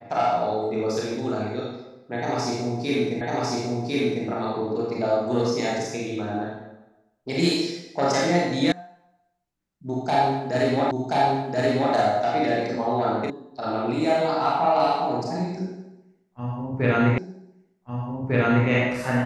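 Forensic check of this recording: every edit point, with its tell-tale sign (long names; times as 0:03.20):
0:03.21: the same again, the last 1.05 s
0:08.72: cut off before it has died away
0:10.91: the same again, the last 1.03 s
0:13.30: cut off before it has died away
0:17.18: the same again, the last 1.5 s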